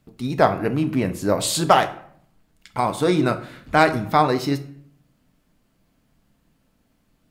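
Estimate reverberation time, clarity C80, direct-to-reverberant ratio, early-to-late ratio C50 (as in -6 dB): 0.60 s, 17.0 dB, 8.0 dB, 14.0 dB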